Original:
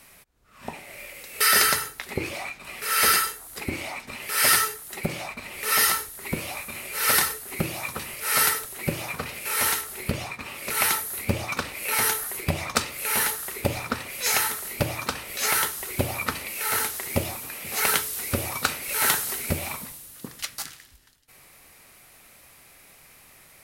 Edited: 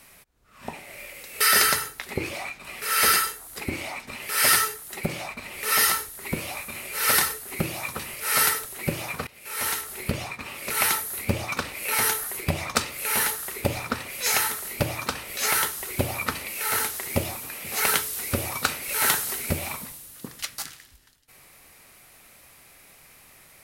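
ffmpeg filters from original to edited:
-filter_complex "[0:a]asplit=2[s0][s1];[s0]atrim=end=9.27,asetpts=PTS-STARTPTS,afade=t=out:st=9.266:d=0.004:c=hsin:silence=0.1[s2];[s1]atrim=start=9.27,asetpts=PTS-STARTPTS,afade=t=in:d=0.65:silence=0.1[s3];[s2][s3]concat=n=2:v=0:a=1"

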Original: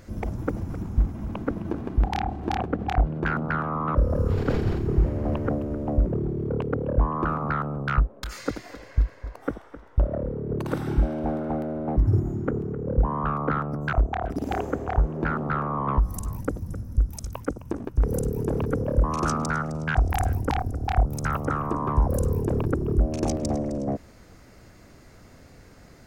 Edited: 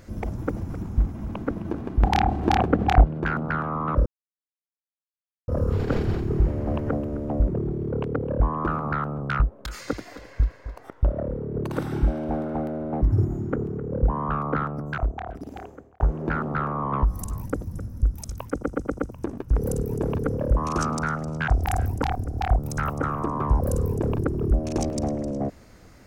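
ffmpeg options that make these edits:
-filter_complex "[0:a]asplit=10[s0][s1][s2][s3][s4][s5][s6][s7][s8][s9];[s0]atrim=end=2.032[s10];[s1]atrim=start=2.028:end=3.042,asetpts=PTS-STARTPTS,volume=2.11[s11];[s2]atrim=start=3.038:end=4.06,asetpts=PTS-STARTPTS,afade=t=out:st=1.018:d=0.004:c=hsin,apad=pad_dur=1.42[s12];[s3]atrim=start=4.06:end=9.482,asetpts=PTS-STARTPTS,afade=t=in:d=0.004:c=hsin[s13];[s4]atrim=start=9.848:end=14.95,asetpts=PTS-STARTPTS,afade=t=out:st=3.642:d=1.46[s14];[s5]atrim=start=14.95:end=17.592,asetpts=PTS-STARTPTS,afade=t=in:d=0.004:c=hsin[s15];[s6]atrim=start=17.468:end=17.592[s16];[s7]atrim=start=17.468:end=17.592[s17];[s8]atrim=start=17.468:end=17.592[s18];[s9]atrim=start=17.468[s19];[s10][s11]acrossfade=d=0.004:c1=hsin:c2=hsin[s20];[s12][s13]concat=n=2:v=0:a=1[s21];[s20][s21]acrossfade=d=0.004:c1=hsin:c2=hsin[s22];[s14][s15]concat=n=2:v=0:a=1[s23];[s22][s23]acrossfade=d=0.004:c1=hsin:c2=hsin[s24];[s24][s16]acrossfade=d=0.004:c1=hsin:c2=hsin[s25];[s25][s17]acrossfade=d=0.004:c1=hsin:c2=hsin[s26];[s26][s18]acrossfade=d=0.004:c1=hsin:c2=hsin[s27];[s27][s19]acrossfade=d=0.004:c1=hsin:c2=hsin"

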